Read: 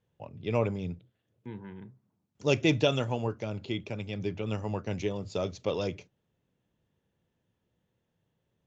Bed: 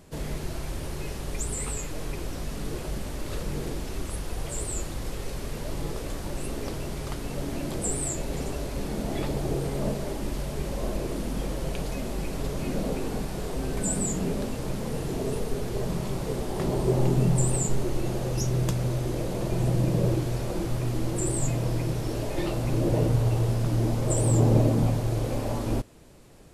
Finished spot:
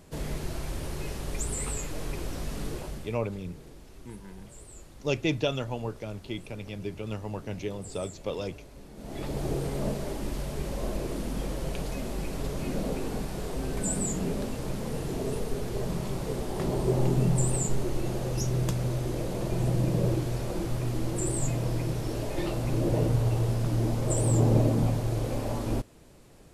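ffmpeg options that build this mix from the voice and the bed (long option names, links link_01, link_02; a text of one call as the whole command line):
ffmpeg -i stem1.wav -i stem2.wav -filter_complex "[0:a]adelay=2600,volume=-2.5dB[link_01];[1:a]volume=13.5dB,afade=type=out:start_time=2.63:duration=0.56:silence=0.16788,afade=type=in:start_time=8.95:duration=0.49:silence=0.188365[link_02];[link_01][link_02]amix=inputs=2:normalize=0" out.wav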